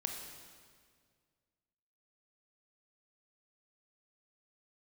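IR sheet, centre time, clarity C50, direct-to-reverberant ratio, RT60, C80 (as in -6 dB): 54 ms, 4.0 dB, 2.5 dB, 1.9 s, 5.5 dB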